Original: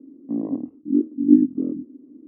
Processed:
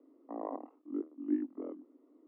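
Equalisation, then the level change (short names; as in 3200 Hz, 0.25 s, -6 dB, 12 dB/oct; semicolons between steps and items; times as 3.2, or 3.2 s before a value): ladder high-pass 650 Hz, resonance 25%; air absorption 330 m; +13.5 dB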